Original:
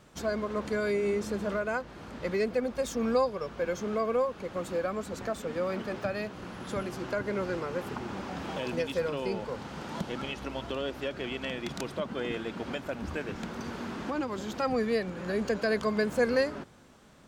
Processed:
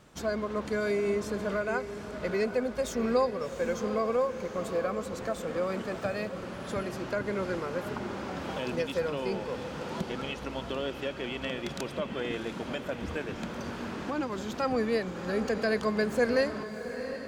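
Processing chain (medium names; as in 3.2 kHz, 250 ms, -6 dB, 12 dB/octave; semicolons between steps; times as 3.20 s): echo that smears into a reverb 725 ms, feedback 43%, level -10 dB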